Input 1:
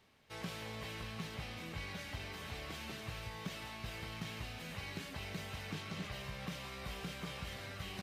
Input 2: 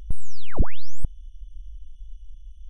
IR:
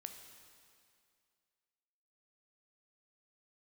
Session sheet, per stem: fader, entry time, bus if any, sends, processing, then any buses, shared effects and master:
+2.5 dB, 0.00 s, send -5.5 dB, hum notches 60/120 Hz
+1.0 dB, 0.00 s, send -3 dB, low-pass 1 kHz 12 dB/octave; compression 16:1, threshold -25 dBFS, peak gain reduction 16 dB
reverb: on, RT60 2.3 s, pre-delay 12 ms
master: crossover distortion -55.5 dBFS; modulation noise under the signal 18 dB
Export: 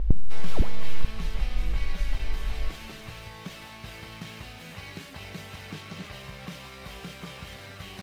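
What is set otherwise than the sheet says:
stem 2 +1.0 dB -> +10.0 dB; master: missing modulation noise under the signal 18 dB

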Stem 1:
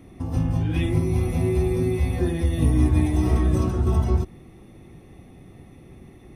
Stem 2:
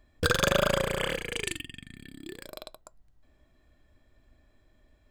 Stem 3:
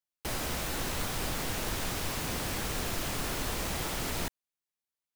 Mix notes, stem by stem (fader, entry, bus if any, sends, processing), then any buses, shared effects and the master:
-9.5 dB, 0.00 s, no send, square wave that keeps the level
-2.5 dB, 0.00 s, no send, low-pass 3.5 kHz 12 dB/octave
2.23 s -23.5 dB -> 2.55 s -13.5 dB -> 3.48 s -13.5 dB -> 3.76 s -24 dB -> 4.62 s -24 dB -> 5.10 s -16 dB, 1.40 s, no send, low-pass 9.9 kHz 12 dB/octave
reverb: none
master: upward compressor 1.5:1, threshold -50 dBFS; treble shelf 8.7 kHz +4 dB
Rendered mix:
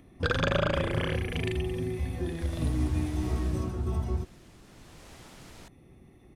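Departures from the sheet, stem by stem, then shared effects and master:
stem 1: missing square wave that keeps the level; master: missing treble shelf 8.7 kHz +4 dB

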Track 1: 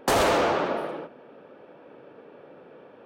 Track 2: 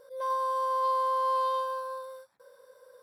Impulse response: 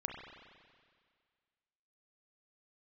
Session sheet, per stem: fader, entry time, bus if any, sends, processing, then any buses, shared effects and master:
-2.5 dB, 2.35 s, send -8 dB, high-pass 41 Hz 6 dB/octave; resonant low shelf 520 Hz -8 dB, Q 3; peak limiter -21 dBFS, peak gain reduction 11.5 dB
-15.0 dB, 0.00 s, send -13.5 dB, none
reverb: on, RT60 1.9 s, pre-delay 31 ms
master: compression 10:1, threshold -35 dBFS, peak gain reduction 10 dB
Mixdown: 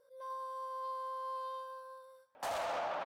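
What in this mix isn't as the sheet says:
stem 1 -2.5 dB -> -11.0 dB; master: missing compression 10:1, threshold -35 dBFS, peak gain reduction 10 dB

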